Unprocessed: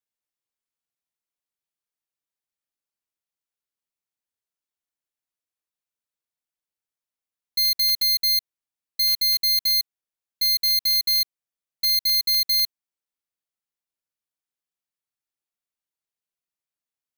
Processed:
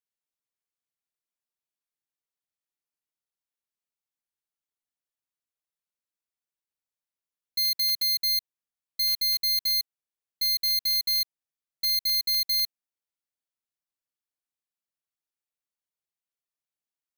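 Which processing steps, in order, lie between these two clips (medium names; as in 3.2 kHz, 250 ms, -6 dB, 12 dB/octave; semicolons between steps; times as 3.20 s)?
7.58–8.25 s: high-pass 150 Hz 12 dB/octave; trim -4.5 dB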